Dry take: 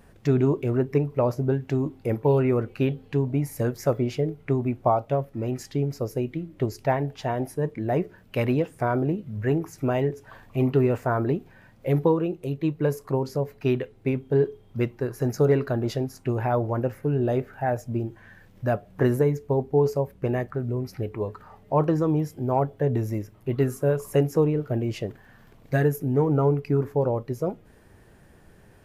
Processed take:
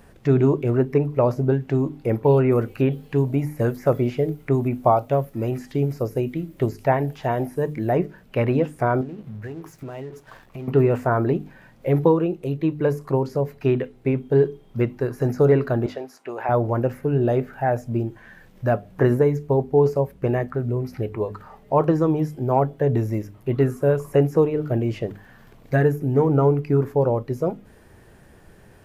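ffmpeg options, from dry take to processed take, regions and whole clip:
ffmpeg -i in.wav -filter_complex "[0:a]asettb=1/sr,asplit=3[link_01][link_02][link_03];[link_01]atrim=end=2.514[link_04];[link_02]atrim=start=2.51:end=7.93,asetpts=PTS-STARTPTS,afade=type=in:duration=0.004:curve=qsin,afade=type=out:start_time=5.416:duration=0.004:curve=qsin,aemphasis=mode=production:type=50kf,acrossover=split=3000[link_05][link_06];[link_06]acompressor=threshold=-46dB:ratio=4:attack=1:release=60[link_07];[link_05][link_07]amix=inputs=2:normalize=0[link_08];[link_03]atrim=start=7.926[link_09];[link_04][link_08]acrossfade=duration=0.004:curve1=hsin:curve2=qsin[link_10];[link_10][link_09]acrossfade=duration=0.004:curve1=qsin:curve2=hsin,asettb=1/sr,asplit=3[link_11][link_12][link_13];[link_11]atrim=end=9.014[link_14];[link_12]atrim=start=9.01:end=10.68,asetpts=PTS-STARTPTS,afade=type=in:duration=0.004:curve=qsin,afade=type=out:start_time=1.666:duration=0.004:curve=qsin,acompressor=threshold=-33dB:ratio=12:attack=3.2:release=140:knee=1:detection=peak,aeval=exprs='sgn(val(0))*max(abs(val(0))-0.00188,0)':channel_layout=same[link_15];[link_13]atrim=start=10.676[link_16];[link_14][link_15]acrossfade=duration=0.004:curve1=hsin:curve2=qsin[link_17];[link_17][link_16]acrossfade=duration=0.004:curve1=qsin:curve2=hsin,asettb=1/sr,asplit=3[link_18][link_19][link_20];[link_18]atrim=end=15.864[link_21];[link_19]atrim=start=15.86:end=16.49,asetpts=PTS-STARTPTS,afade=type=in:duration=0.004:curve=qsin,afade=type=out:start_time=0.626:duration=0.004:curve=qsin,highpass=570,highshelf=frequency=6400:gain=-9[link_22];[link_20]atrim=start=16.486[link_23];[link_21][link_22]acrossfade=duration=0.004:curve1=hsin:curve2=qsin[link_24];[link_24][link_23]acrossfade=duration=0.004:curve1=qsin:curve2=hsin,bandreject=frequency=50:width_type=h:width=6,bandreject=frequency=100:width_type=h:width=6,bandreject=frequency=150:width_type=h:width=6,bandreject=frequency=200:width_type=h:width=6,bandreject=frequency=250:width_type=h:width=6,bandreject=frequency=300:width_type=h:width=6,acrossover=split=2500[link_25][link_26];[link_26]acompressor=threshold=-51dB:ratio=4:attack=1:release=60[link_27];[link_25][link_27]amix=inputs=2:normalize=0,volume=4dB" out.wav

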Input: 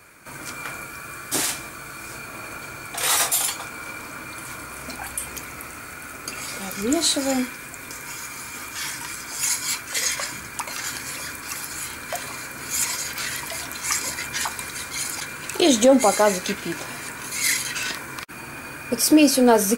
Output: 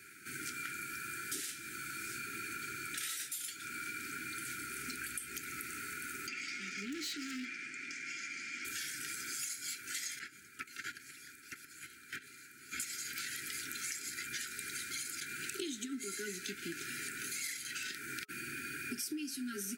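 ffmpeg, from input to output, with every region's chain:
ffmpeg -i in.wav -filter_complex "[0:a]asettb=1/sr,asplit=3[link_01][link_02][link_03];[link_01]atrim=end=6.274[link_04];[link_02]atrim=start=6.27:end=8.65,asetpts=PTS-STARTPTS,afade=type=in:duration=0.004:curve=qsin,afade=type=out:start_time=2.376:duration=0.004:curve=qsin,highpass=240,equalizer=frequency=400:width_type=q:width=4:gain=-9,equalizer=frequency=1500:width_type=q:width=4:gain=-7,equalizer=frequency=2100:width_type=q:width=4:gain=4,equalizer=frequency=3900:width_type=q:width=4:gain=-8,lowpass=frequency=5700:width=0.5412,lowpass=frequency=5700:width=1.3066,volume=28dB,asoftclip=hard,volume=-28dB[link_05];[link_03]atrim=start=8.646[link_06];[link_04][link_05]acrossfade=duration=0.004:curve1=hsin:curve2=qsin[link_07];[link_07][link_06]acrossfade=duration=0.004:curve1=qsin:curve2=hsin,asettb=1/sr,asplit=3[link_08][link_09][link_10];[link_08]atrim=end=10.194[link_11];[link_09]atrim=start=10.19:end=12.8,asetpts=PTS-STARTPTS,afade=type=in:duration=0.004:curve=qsin,afade=type=out:start_time=2.606:duration=0.004:curve=qsin,agate=range=-16dB:threshold=-30dB:ratio=16:release=100:detection=peak,acrossover=split=3300[link_12][link_13];[link_13]acompressor=threshold=-46dB:ratio=4:attack=1:release=60[link_14];[link_12][link_14]amix=inputs=2:normalize=0[link_15];[link_10]atrim=start=12.796[link_16];[link_11][link_15]acrossfade=duration=0.004:curve1=hsin:curve2=qsin[link_17];[link_17][link_16]acrossfade=duration=0.004:curve1=qsin:curve2=hsin,highpass=frequency=240:poles=1,afftfilt=real='re*(1-between(b*sr/4096,430,1300))':imag='im*(1-between(b*sr/4096,430,1300))':win_size=4096:overlap=0.75,acompressor=threshold=-34dB:ratio=10,volume=-4dB" out.wav

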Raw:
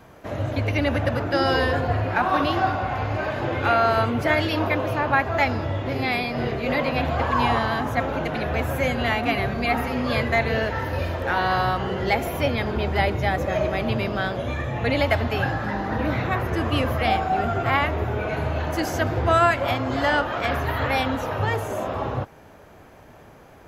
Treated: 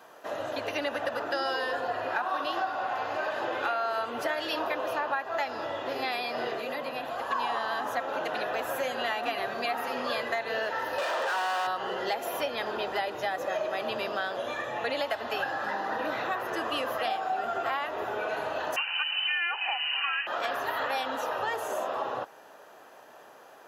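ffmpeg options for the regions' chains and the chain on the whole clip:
ffmpeg -i in.wav -filter_complex "[0:a]asettb=1/sr,asplit=3[link_01][link_02][link_03];[link_01]atrim=end=6.594[link_04];[link_02]atrim=start=6.59:end=7.31,asetpts=PTS-STARTPTS,afade=type=in:duration=0.004:curve=qsin,afade=type=out:start_time=0.716:duration=0.004:curve=qsin,equalizer=frequency=11000:width_type=o:width=1:gain=11.5,acrossover=split=340|4000[link_05][link_06][link_07];[link_05]acompressor=threshold=-29dB:ratio=4[link_08];[link_06]acompressor=threshold=-32dB:ratio=4[link_09];[link_07]acompressor=threshold=-55dB:ratio=4[link_10];[link_08][link_09][link_10]amix=inputs=3:normalize=0[link_11];[link_03]atrim=start=7.306[link_12];[link_04][link_11]acrossfade=duration=0.004:curve1=hsin:curve2=qsin[link_13];[link_13][link_12]acrossfade=duration=0.004:curve1=qsin:curve2=hsin,asettb=1/sr,asplit=3[link_14][link_15][link_16];[link_14]atrim=end=10.984[link_17];[link_15]atrim=start=10.98:end=11.67,asetpts=PTS-STARTPTS,afade=type=in:duration=0.004:curve=qsin,afade=type=out:start_time=0.686:duration=0.004:curve=qsin,highpass=390,volume=26.5dB,asoftclip=hard,volume=-26.5dB,asplit=2[link_18][link_19];[link_19]highpass=frequency=720:poles=1,volume=30dB,asoftclip=type=tanh:threshold=-16dB[link_20];[link_18][link_20]amix=inputs=2:normalize=0,lowpass=frequency=1900:poles=1,volume=-6dB[link_21];[link_16]atrim=start=11.666[link_22];[link_17][link_21]acrossfade=duration=0.004:curve1=hsin:curve2=qsin[link_23];[link_23][link_22]acrossfade=duration=0.004:curve1=qsin:curve2=hsin,asettb=1/sr,asplit=3[link_24][link_25][link_26];[link_24]atrim=end=18.764[link_27];[link_25]atrim=start=18.76:end=20.27,asetpts=PTS-STARTPTS,afade=type=in:duration=0.004:curve=qsin,afade=type=out:start_time=1.506:duration=0.004:curve=qsin,lowpass=frequency=2600:width_type=q:width=0.5098,lowpass=frequency=2600:width_type=q:width=0.6013,lowpass=frequency=2600:width_type=q:width=0.9,lowpass=frequency=2600:width_type=q:width=2.563,afreqshift=-3100,equalizer=frequency=800:width=4.2:gain=10.5[link_28];[link_26]atrim=start=20.266[link_29];[link_27][link_28]acrossfade=duration=0.004:curve1=hsin:curve2=qsin[link_30];[link_30][link_29]acrossfade=duration=0.004:curve1=qsin:curve2=hsin,highpass=530,bandreject=frequency=2200:width=5.2,acompressor=threshold=-27dB:ratio=6" out.wav

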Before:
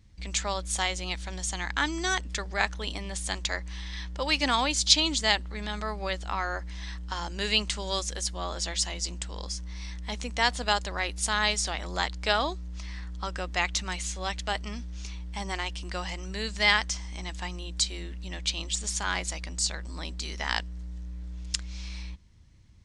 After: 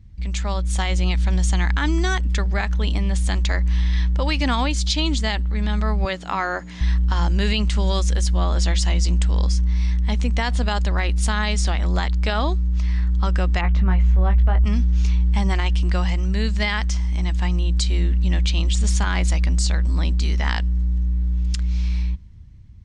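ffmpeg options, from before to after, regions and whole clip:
ffmpeg -i in.wav -filter_complex "[0:a]asettb=1/sr,asplit=3[link_01][link_02][link_03];[link_01]atrim=end=6.054[link_04];[link_02]atrim=start=6.05:end=6.81,asetpts=PTS-STARTPTS,afade=type=in:duration=0.004:curve=qsin,afade=type=out:start_time=0.756:duration=0.004:curve=qsin,highpass=230,aeval=exprs='val(0)+0.000794*sin(2*PI*6800*n/s)':channel_layout=same[link_05];[link_03]atrim=start=6.806[link_06];[link_04][link_05]acrossfade=duration=0.004:curve1=hsin:curve2=qsin[link_07];[link_07][link_06]acrossfade=duration=0.004:curve1=qsin:curve2=hsin,asettb=1/sr,asplit=3[link_08][link_09][link_10];[link_08]atrim=end=13.614[link_11];[link_09]atrim=start=13.61:end=14.65,asetpts=PTS-STARTPTS,afade=type=in:duration=0.004:curve=qsin,afade=type=out:start_time=1.036:duration=0.004:curve=qsin,lowpass=1400,asubboost=boost=9:cutoff=68,asplit=2[link_12][link_13];[link_13]adelay=21,volume=-7.5dB[link_14];[link_12][link_14]amix=inputs=2:normalize=0,atrim=end_sample=45864[link_15];[link_10]atrim=start=14.646[link_16];[link_11][link_15]acrossfade=duration=0.004:curve1=hsin:curve2=qsin[link_17];[link_17][link_16]acrossfade=duration=0.004:curve1=qsin:curve2=hsin,dynaudnorm=framelen=120:gausssize=13:maxgain=8dB,bass=frequency=250:gain=13,treble=frequency=4000:gain=-6,alimiter=limit=-10.5dB:level=0:latency=1:release=68" out.wav

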